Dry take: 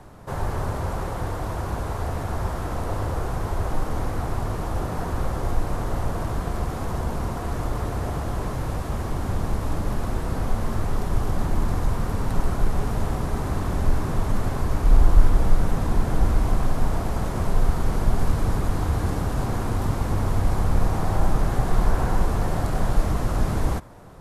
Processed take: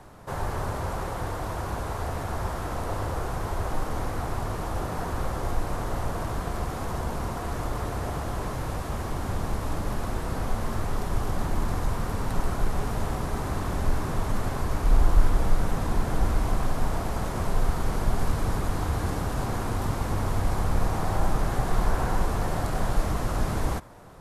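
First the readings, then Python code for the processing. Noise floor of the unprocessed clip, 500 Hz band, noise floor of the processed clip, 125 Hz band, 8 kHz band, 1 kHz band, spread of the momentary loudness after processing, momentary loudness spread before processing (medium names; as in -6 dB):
-30 dBFS, -2.0 dB, -33 dBFS, -4.5 dB, 0.0 dB, -1.0 dB, 5 LU, 5 LU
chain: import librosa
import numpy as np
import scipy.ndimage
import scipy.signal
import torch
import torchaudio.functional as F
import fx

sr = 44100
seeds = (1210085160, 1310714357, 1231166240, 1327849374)

y = fx.low_shelf(x, sr, hz=460.0, db=-4.5)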